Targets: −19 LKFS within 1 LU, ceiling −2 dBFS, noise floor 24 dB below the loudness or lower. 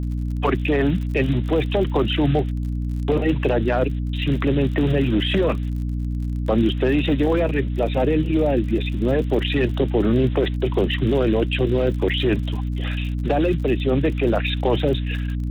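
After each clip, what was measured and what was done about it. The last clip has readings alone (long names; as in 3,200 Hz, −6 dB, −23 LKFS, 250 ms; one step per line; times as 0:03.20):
crackle rate 48 per second; mains hum 60 Hz; hum harmonics up to 300 Hz; level of the hum −22 dBFS; integrated loudness −21.5 LKFS; sample peak −7.5 dBFS; target loudness −19.0 LKFS
→ click removal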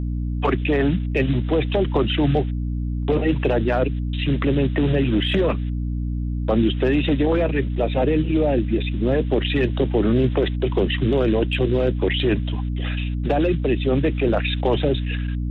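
crackle rate 0 per second; mains hum 60 Hz; hum harmonics up to 300 Hz; level of the hum −22 dBFS
→ mains-hum notches 60/120/180/240/300 Hz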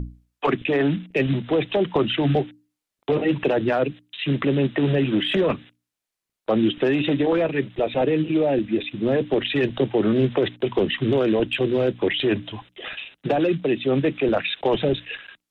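mains hum none found; integrated loudness −22.5 LKFS; sample peak −8.0 dBFS; target loudness −19.0 LKFS
→ level +3.5 dB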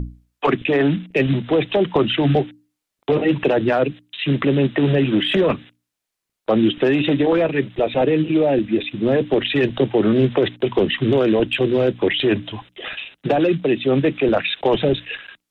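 integrated loudness −19.0 LKFS; sample peak −4.5 dBFS; background noise floor −82 dBFS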